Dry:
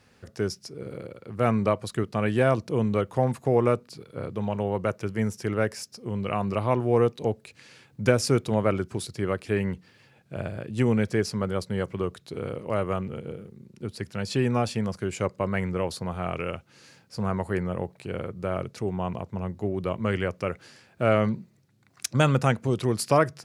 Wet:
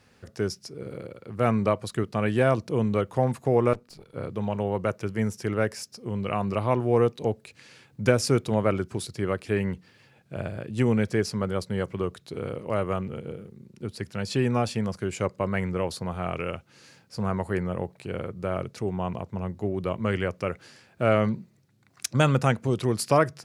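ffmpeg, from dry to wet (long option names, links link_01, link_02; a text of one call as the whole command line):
ffmpeg -i in.wav -filter_complex "[0:a]asettb=1/sr,asplit=3[link_01][link_02][link_03];[link_01]atrim=end=3.734[link_04];[link_02]atrim=start=3.73:end=4.14,asetpts=PTS-STARTPTS,afade=type=in:duration=0.004:curve=qsin,afade=type=out:start_time=0.406:duration=0.004:curve=qsin,aeval=exprs='(tanh(63.1*val(0)+0.75)-tanh(0.75))/63.1':channel_layout=same[link_05];[link_03]atrim=start=4.136[link_06];[link_04][link_05]acrossfade=duration=0.004:curve1=hsin:curve2=qsin[link_07];[link_07][link_06]acrossfade=duration=0.004:curve1=qsin:curve2=hsin" out.wav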